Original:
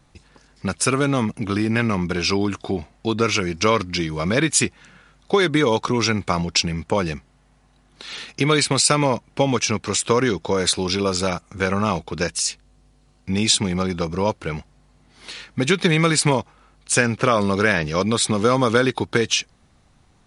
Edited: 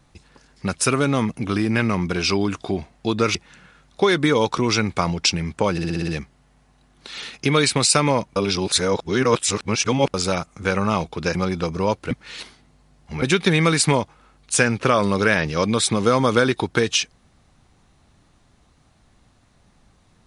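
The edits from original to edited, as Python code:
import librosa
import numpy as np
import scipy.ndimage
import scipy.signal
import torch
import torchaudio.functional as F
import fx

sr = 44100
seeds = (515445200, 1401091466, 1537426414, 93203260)

y = fx.edit(x, sr, fx.cut(start_s=3.35, length_s=1.31),
    fx.stutter(start_s=7.03, slice_s=0.06, count=7),
    fx.reverse_span(start_s=9.31, length_s=1.78),
    fx.cut(start_s=12.3, length_s=1.43),
    fx.reverse_span(start_s=14.49, length_s=1.11), tone=tone)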